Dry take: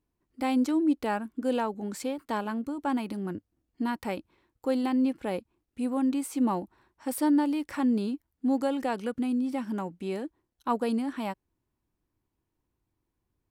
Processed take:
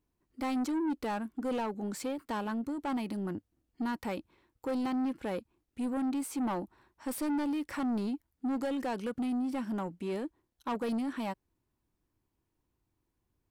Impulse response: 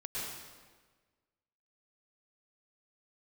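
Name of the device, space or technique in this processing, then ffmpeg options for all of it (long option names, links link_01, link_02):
saturation between pre-emphasis and de-emphasis: -af "highshelf=frequency=3300:gain=8.5,asoftclip=type=tanh:threshold=-28.5dB,highshelf=frequency=3300:gain=-8.5"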